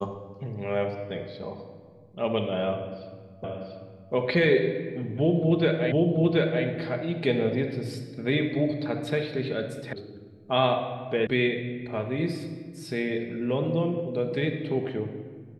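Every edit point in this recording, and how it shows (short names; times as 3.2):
3.44 repeat of the last 0.69 s
5.92 repeat of the last 0.73 s
9.93 sound cut off
11.27 sound cut off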